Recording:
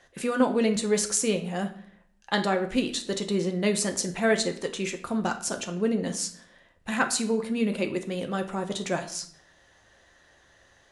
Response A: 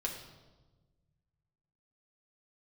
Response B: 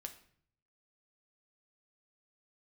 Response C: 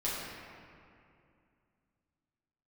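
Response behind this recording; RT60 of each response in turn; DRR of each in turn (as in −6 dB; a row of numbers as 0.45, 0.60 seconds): B; 1.3, 0.60, 2.5 seconds; −1.0, 5.0, −9.0 decibels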